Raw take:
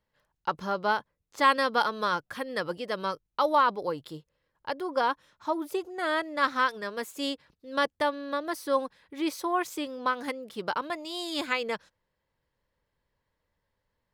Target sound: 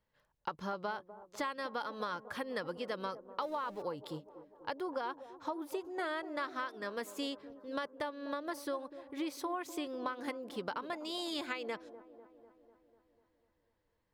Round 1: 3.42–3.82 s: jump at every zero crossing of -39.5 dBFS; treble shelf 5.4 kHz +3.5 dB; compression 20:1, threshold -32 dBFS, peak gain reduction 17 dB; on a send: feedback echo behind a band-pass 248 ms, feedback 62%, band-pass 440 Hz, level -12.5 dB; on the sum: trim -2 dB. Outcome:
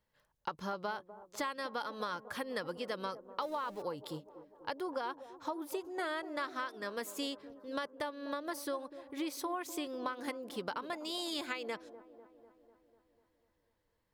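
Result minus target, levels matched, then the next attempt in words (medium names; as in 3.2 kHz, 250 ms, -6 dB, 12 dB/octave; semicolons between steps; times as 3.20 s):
8 kHz band +4.5 dB
3.42–3.82 s: jump at every zero crossing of -39.5 dBFS; treble shelf 5.4 kHz -3.5 dB; compression 20:1, threshold -32 dBFS, peak gain reduction 16.5 dB; on a send: feedback echo behind a band-pass 248 ms, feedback 62%, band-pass 440 Hz, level -12.5 dB; on the sum: trim -2 dB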